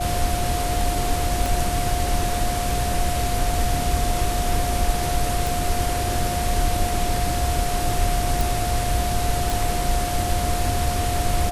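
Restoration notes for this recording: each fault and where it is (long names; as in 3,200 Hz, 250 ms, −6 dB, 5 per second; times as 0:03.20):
whistle 710 Hz −26 dBFS
0:01.46: click
0:05.47: click
0:08.41: click
0:09.50: click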